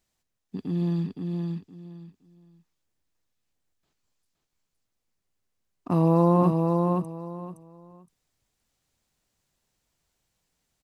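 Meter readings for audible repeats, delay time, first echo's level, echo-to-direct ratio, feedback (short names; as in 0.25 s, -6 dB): 3, 0.517 s, -4.0 dB, -4.0 dB, 22%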